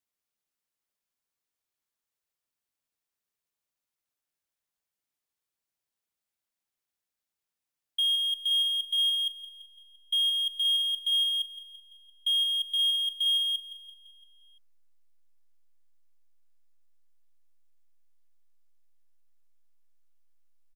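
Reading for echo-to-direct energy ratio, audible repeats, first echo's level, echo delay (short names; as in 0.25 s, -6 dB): -9.0 dB, 5, -10.5 dB, 0.17 s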